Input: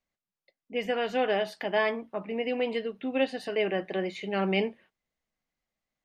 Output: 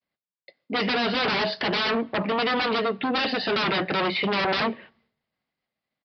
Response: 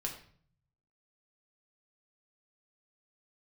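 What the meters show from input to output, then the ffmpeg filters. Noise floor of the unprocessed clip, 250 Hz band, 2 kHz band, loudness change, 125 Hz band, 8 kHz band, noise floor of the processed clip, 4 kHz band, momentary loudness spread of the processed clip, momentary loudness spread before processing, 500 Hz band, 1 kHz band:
below −85 dBFS, +5.0 dB, +8.0 dB, +5.5 dB, +5.5 dB, can't be measured, below −85 dBFS, +11.5 dB, 3 LU, 7 LU, +1.0 dB, +8.5 dB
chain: -filter_complex "[0:a]aeval=exprs='0.237*sin(PI/2*10*val(0)/0.237)':channel_layout=same,agate=range=-33dB:threshold=-54dB:ratio=3:detection=peak,aresample=11025,aresample=44100,highpass=97,asplit=2[link_01][link_02];[1:a]atrim=start_sample=2205,asetrate=37044,aresample=44100[link_03];[link_02][link_03]afir=irnorm=-1:irlink=0,volume=-21dB[link_04];[link_01][link_04]amix=inputs=2:normalize=0,volume=-8.5dB"

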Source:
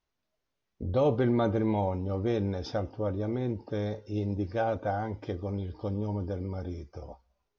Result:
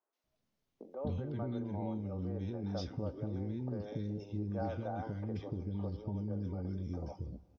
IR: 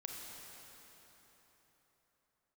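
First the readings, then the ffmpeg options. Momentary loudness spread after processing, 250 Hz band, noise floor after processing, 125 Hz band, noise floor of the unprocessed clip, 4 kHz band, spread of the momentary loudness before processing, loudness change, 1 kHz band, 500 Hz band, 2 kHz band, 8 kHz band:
3 LU, −7.0 dB, −84 dBFS, −6.0 dB, −83 dBFS, −8.5 dB, 11 LU, −8.5 dB, −11.5 dB, −12.0 dB, −14.0 dB, can't be measured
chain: -filter_complex "[0:a]equalizer=frequency=180:width=0.68:gain=8.5,alimiter=limit=-19.5dB:level=0:latency=1,acompressor=threshold=-32dB:ratio=6,acrossover=split=370|1600[link_01][link_02][link_03];[link_03]adelay=130[link_04];[link_01]adelay=240[link_05];[link_05][link_02][link_04]amix=inputs=3:normalize=0,asplit=2[link_06][link_07];[1:a]atrim=start_sample=2205[link_08];[link_07][link_08]afir=irnorm=-1:irlink=0,volume=-18dB[link_09];[link_06][link_09]amix=inputs=2:normalize=0,volume=-2dB"

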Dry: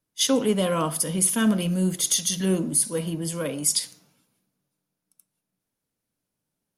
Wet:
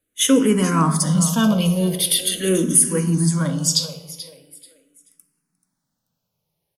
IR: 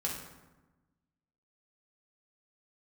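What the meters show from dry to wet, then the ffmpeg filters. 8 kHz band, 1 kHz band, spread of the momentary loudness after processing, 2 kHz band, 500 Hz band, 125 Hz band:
+4.0 dB, +7.0 dB, 13 LU, +5.0 dB, +3.5 dB, +9.0 dB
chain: -filter_complex "[0:a]aecho=1:1:434|868|1302:0.188|0.0527|0.0148,asplit=2[link_01][link_02];[1:a]atrim=start_sample=2205[link_03];[link_02][link_03]afir=irnorm=-1:irlink=0,volume=-8.5dB[link_04];[link_01][link_04]amix=inputs=2:normalize=0,asplit=2[link_05][link_06];[link_06]afreqshift=-0.42[link_07];[link_05][link_07]amix=inputs=2:normalize=1,volume=5.5dB"

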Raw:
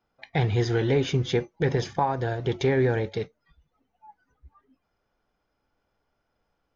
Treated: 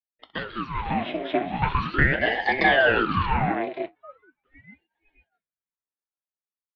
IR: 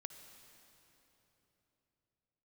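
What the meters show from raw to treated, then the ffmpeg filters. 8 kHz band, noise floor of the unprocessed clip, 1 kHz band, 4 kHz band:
can't be measured, −77 dBFS, +7.0 dB, +4.0 dB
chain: -af "agate=range=-33dB:threshold=-54dB:ratio=3:detection=peak,dynaudnorm=framelen=330:gausssize=9:maxgain=9dB,highpass=frequency=330:width_type=q:width=0.5412,highpass=frequency=330:width_type=q:width=1.307,lowpass=frequency=3100:width_type=q:width=0.5176,lowpass=frequency=3100:width_type=q:width=0.7071,lowpass=frequency=3100:width_type=q:width=1.932,afreqshift=69,aecho=1:1:64|192|500|603|630:0.168|0.211|0.316|0.316|0.447,aeval=exprs='val(0)*sin(2*PI*710*n/s+710*0.8/0.4*sin(2*PI*0.4*n/s))':channel_layout=same"

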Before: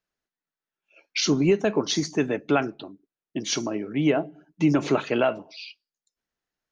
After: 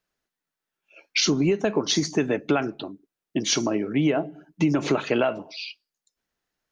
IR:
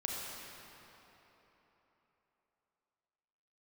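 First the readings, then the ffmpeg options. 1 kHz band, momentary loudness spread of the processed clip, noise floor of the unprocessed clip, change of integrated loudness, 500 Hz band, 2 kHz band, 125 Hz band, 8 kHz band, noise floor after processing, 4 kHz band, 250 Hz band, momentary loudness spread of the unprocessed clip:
−0.5 dB, 13 LU, below −85 dBFS, +0.5 dB, −0.5 dB, +1.0 dB, +0.5 dB, can't be measured, below −85 dBFS, +3.0 dB, +0.5 dB, 17 LU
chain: -af "acompressor=threshold=-23dB:ratio=6,volume=5dB"

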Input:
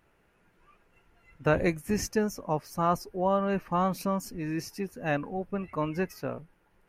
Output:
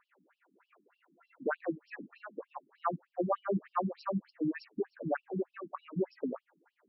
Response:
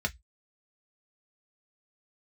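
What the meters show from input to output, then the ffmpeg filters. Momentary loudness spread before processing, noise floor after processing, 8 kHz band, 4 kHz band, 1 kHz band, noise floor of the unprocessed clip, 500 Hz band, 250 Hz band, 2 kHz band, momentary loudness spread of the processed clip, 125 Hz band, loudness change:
7 LU, −84 dBFS, below −40 dB, −16.5 dB, −7.5 dB, −67 dBFS, −6.5 dB, −6.0 dB, −8.5 dB, 13 LU, −9.5 dB, −7.0 dB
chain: -af "highshelf=frequency=2200:width_type=q:width=1.5:gain=-8,alimiter=limit=-21.5dB:level=0:latency=1:release=261,afftfilt=real='re*between(b*sr/1024,230*pow(4000/230,0.5+0.5*sin(2*PI*3.3*pts/sr))/1.41,230*pow(4000/230,0.5+0.5*sin(2*PI*3.3*pts/sr))*1.41)':imag='im*between(b*sr/1024,230*pow(4000/230,0.5+0.5*sin(2*PI*3.3*pts/sr))/1.41,230*pow(4000/230,0.5+0.5*sin(2*PI*3.3*pts/sr))*1.41)':win_size=1024:overlap=0.75,volume=5dB"

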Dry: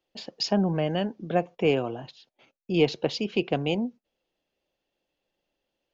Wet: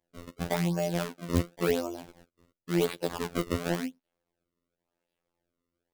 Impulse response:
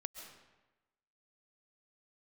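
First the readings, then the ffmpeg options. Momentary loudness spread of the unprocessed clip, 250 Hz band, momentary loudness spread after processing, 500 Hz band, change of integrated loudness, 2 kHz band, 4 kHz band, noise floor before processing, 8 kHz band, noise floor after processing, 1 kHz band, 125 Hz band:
9 LU, −4.0 dB, 10 LU, −4.5 dB, −4.0 dB, −2.5 dB, −7.5 dB, −83 dBFS, can't be measured, below −85 dBFS, −4.0 dB, −1.5 dB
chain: -af "acrusher=samples=31:mix=1:aa=0.000001:lfo=1:lforange=49.6:lforate=0.93,afftfilt=real='hypot(re,im)*cos(PI*b)':imag='0':win_size=2048:overlap=0.75,aeval=exprs='0.316*(abs(mod(val(0)/0.316+3,4)-2)-1)':channel_layout=same"

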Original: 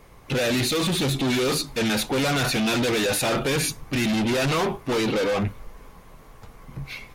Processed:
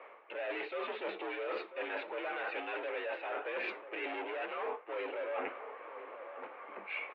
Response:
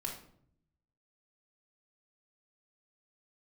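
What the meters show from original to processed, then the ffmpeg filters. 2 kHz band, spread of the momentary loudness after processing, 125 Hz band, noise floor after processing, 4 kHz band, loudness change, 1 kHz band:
−11.0 dB, 9 LU, below −40 dB, −54 dBFS, −23.5 dB, −16.5 dB, −10.5 dB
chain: -filter_complex "[0:a]flanger=delay=6.1:depth=3.8:regen=-88:speed=1.4:shape=sinusoidal,highpass=frequency=370:width_type=q:width=0.5412,highpass=frequency=370:width_type=q:width=1.307,lowpass=frequency=2600:width_type=q:width=0.5176,lowpass=frequency=2600:width_type=q:width=0.7071,lowpass=frequency=2600:width_type=q:width=1.932,afreqshift=60,areverse,acompressor=threshold=-43dB:ratio=16,areverse,asplit=2[link_01][link_02];[link_02]adelay=991.3,volume=-11dB,highshelf=frequency=4000:gain=-22.3[link_03];[link_01][link_03]amix=inputs=2:normalize=0,volume=7.5dB"

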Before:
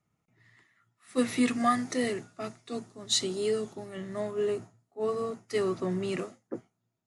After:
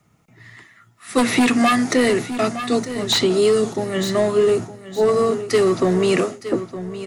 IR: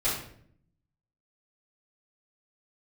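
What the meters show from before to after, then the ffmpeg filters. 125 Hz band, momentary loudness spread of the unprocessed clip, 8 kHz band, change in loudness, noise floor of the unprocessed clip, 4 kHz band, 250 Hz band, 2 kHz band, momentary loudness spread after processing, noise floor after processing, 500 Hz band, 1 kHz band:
+13.0 dB, 14 LU, +8.5 dB, +12.5 dB, −81 dBFS, +11.0 dB, +12.0 dB, +14.5 dB, 7 LU, −56 dBFS, +14.0 dB, +10.5 dB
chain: -filter_complex "[0:a]aeval=exprs='0.2*sin(PI/2*2.24*val(0)/0.2)':channel_layout=same,aecho=1:1:913|1826|2739:0.168|0.0436|0.0113,acrossover=split=220|3700[link_01][link_02][link_03];[link_01]acompressor=threshold=-35dB:ratio=4[link_04];[link_02]acompressor=threshold=-21dB:ratio=4[link_05];[link_03]acompressor=threshold=-36dB:ratio=4[link_06];[link_04][link_05][link_06]amix=inputs=3:normalize=0,volume=7dB"

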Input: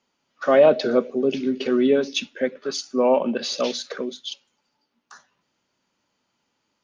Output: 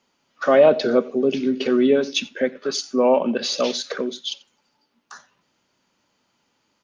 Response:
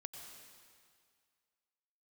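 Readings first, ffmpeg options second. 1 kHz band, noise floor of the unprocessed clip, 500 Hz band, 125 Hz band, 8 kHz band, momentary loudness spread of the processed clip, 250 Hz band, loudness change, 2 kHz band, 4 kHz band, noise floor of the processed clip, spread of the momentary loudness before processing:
+1.5 dB, −75 dBFS, +1.5 dB, +1.5 dB, can't be measured, 12 LU, +2.0 dB, +1.5 dB, +2.0 dB, +3.0 dB, −70 dBFS, 15 LU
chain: -filter_complex "[0:a]asplit=2[link_01][link_02];[link_02]acompressor=threshold=-29dB:ratio=6,volume=-2.5dB[link_03];[link_01][link_03]amix=inputs=2:normalize=0,aecho=1:1:89:0.0794"

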